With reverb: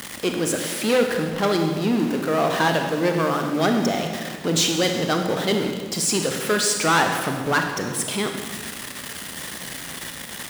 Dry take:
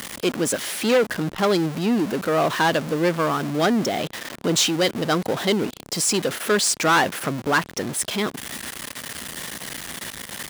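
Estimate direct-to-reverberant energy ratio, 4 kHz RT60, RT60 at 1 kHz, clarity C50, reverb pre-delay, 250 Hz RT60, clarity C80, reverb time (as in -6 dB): 3.5 dB, 1.4 s, 1.5 s, 5.0 dB, 26 ms, 2.0 s, 6.5 dB, 1.6 s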